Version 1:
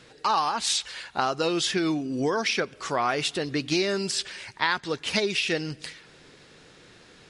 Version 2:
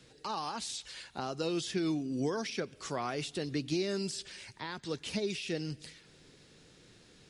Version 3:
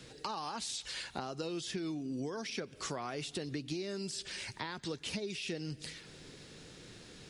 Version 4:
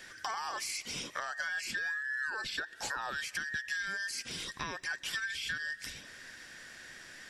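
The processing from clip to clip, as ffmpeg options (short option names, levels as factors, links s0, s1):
-filter_complex "[0:a]equalizer=f=1200:w=0.4:g=-9,acrossover=split=120|810[s0][s1][s2];[s2]alimiter=level_in=1.41:limit=0.0631:level=0:latency=1:release=122,volume=0.708[s3];[s0][s1][s3]amix=inputs=3:normalize=0,volume=0.708"
-af "acompressor=threshold=0.00708:ratio=6,volume=2.11"
-af "afftfilt=real='real(if(between(b,1,1012),(2*floor((b-1)/92)+1)*92-b,b),0)':imag='imag(if(between(b,1,1012),(2*floor((b-1)/92)+1)*92-b,b),0)*if(between(b,1,1012),-1,1)':win_size=2048:overlap=0.75,asoftclip=type=tanh:threshold=0.0562,volume=1.33"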